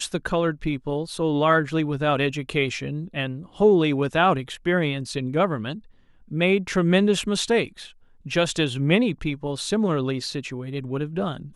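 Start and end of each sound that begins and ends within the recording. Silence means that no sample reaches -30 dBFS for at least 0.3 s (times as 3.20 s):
6.31–7.83 s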